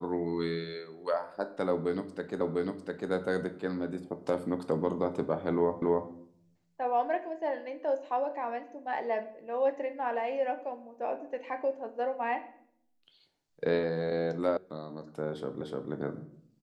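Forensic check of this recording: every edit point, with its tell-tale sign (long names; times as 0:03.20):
0:02.41: the same again, the last 0.7 s
0:05.82: the same again, the last 0.28 s
0:14.57: cut off before it has died away
0:15.61: the same again, the last 0.3 s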